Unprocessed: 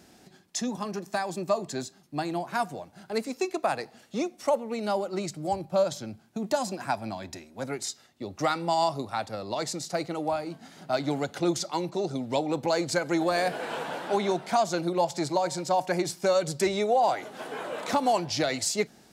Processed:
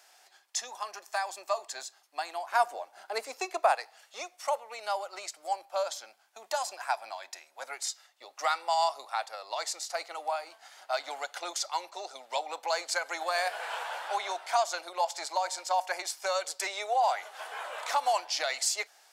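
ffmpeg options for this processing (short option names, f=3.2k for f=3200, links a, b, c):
-filter_complex "[0:a]asettb=1/sr,asplit=3[a][b][c];[a]atrim=end=2.524[d];[b]atrim=start=2.52:end=3.75,asetpts=PTS-STARTPTS,afade=t=in:d=0.004:c=qsin,afade=t=out:st=1.226:d=0.004:c=qsin,equalizer=f=270:w=0.41:g=11.5[e];[c]atrim=start=3.746[f];[d][e]acrossfade=d=0.004:c1=hsin:c2=qsin[g];[g][f]acrossfade=d=0.004:c1=qsin:c2=hsin,highpass=f=710:w=0.5412,highpass=f=710:w=1.3066,bandreject=f=3.9k:w=28"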